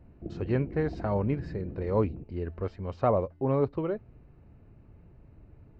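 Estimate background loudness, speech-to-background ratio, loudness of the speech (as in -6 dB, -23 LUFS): -42.0 LUFS, 11.5 dB, -30.5 LUFS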